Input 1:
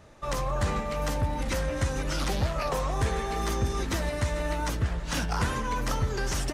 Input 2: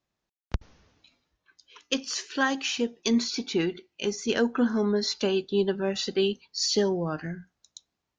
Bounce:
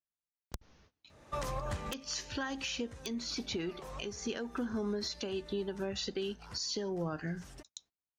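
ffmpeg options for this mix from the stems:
-filter_complex "[0:a]highpass=45,adelay=1100,volume=-1dB,afade=t=out:st=6.02:d=0.56:silence=0.446684[a];[1:a]agate=range=-22dB:threshold=-59dB:ratio=16:detection=peak,acompressor=threshold=-28dB:ratio=6,aeval=exprs='(mod(7.08*val(0)+1,2)-1)/7.08':c=same,volume=-1dB,asplit=2[b][c];[c]apad=whole_len=336546[d];[a][d]sidechaincompress=threshold=-55dB:ratio=4:attack=10:release=428[e];[e][b]amix=inputs=2:normalize=0,alimiter=level_in=3dB:limit=-24dB:level=0:latency=1:release=378,volume=-3dB"

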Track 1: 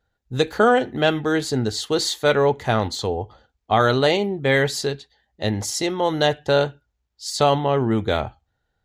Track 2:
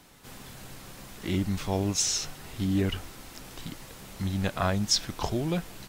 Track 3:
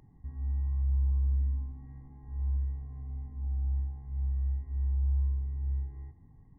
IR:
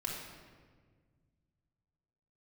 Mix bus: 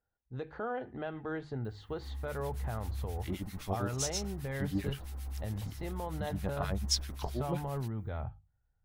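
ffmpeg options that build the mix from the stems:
-filter_complex "[0:a]lowpass=1.2k,bandreject=f=50:t=h:w=6,bandreject=f=100:t=h:w=6,bandreject=f=150:t=h:w=6,asubboost=boost=6.5:cutoff=130,volume=-10.5dB[a];[1:a]acrossover=split=1300[b][c];[b]aeval=exprs='val(0)*(1-1/2+1/2*cos(2*PI*7.6*n/s))':c=same[d];[c]aeval=exprs='val(0)*(1-1/2-1/2*cos(2*PI*7.6*n/s))':c=same[e];[d][e]amix=inputs=2:normalize=0,adelay=2000,volume=-5dB[f];[2:a]bass=f=250:g=-6,treble=f=4k:g=7,adelay=1650,volume=0.5dB[g];[a][g]amix=inputs=2:normalize=0,tiltshelf=f=970:g=-4,alimiter=level_in=4.5dB:limit=-24dB:level=0:latency=1:release=119,volume=-4.5dB,volume=0dB[h];[f][h]amix=inputs=2:normalize=0,aexciter=amount=1.7:drive=5.5:freq=9.7k"

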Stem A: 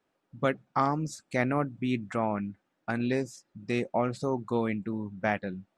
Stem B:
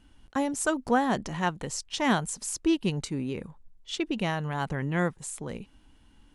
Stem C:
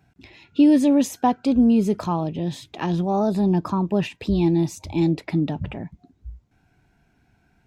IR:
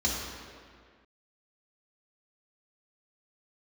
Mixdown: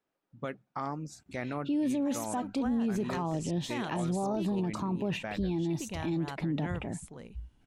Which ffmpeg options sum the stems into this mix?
-filter_complex "[0:a]volume=-7.5dB[a];[1:a]adelay=1700,volume=-10.5dB[b];[2:a]equalizer=f=5k:w=7.6:g=-5.5,adelay=1100,volume=-4.5dB[c];[a][b][c]amix=inputs=3:normalize=0,alimiter=limit=-24dB:level=0:latency=1:release=49"

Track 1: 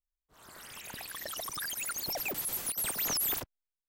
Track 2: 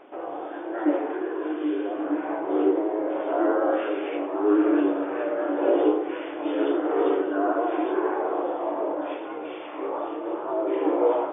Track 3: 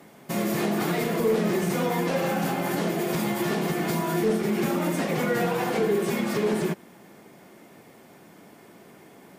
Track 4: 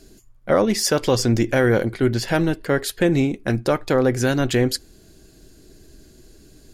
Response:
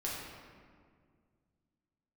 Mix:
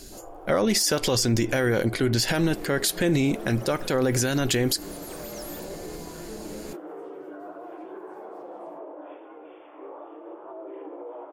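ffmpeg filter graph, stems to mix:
-filter_complex "[0:a]asoftclip=type=tanh:threshold=-24dB,adelay=2250,volume=-12dB[a];[1:a]highpass=f=260:p=1,highshelf=f=2.1k:g=-10.5,alimiter=limit=-22.5dB:level=0:latency=1:release=111,volume=-9dB[b];[2:a]adelay=2050,volume=-17dB[c];[3:a]highshelf=f=2.8k:g=8.5,volume=2.5dB,asplit=2[d][e];[e]apad=whole_len=504171[f];[c][f]sidechaingate=range=-18dB:threshold=-45dB:ratio=16:detection=peak[g];[a][b][g][d]amix=inputs=4:normalize=0,alimiter=limit=-13.5dB:level=0:latency=1:release=77"

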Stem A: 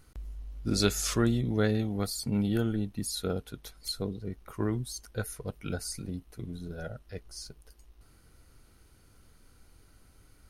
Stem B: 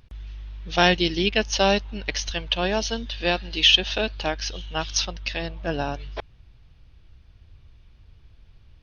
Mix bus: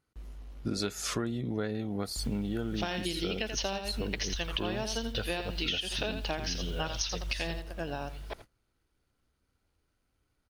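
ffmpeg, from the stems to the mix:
-filter_complex "[0:a]highpass=f=170:p=1,highshelf=f=6.5k:g=-9.5,acontrast=34,volume=1.5dB,asplit=2[a][b];[1:a]acompressor=threshold=-21dB:ratio=6,acrusher=bits=8:mix=0:aa=0.000001,adelay=2050,volume=2dB,asplit=2[c][d];[d]volume=-9.5dB[e];[b]apad=whole_len=479773[f];[c][f]sidechaingate=range=-33dB:threshold=-50dB:ratio=16:detection=peak[g];[e]aecho=0:1:83|166|249:1|0.16|0.0256[h];[a][g][h]amix=inputs=3:normalize=0,agate=range=-22dB:threshold=-47dB:ratio=16:detection=peak,acompressor=threshold=-30dB:ratio=6"

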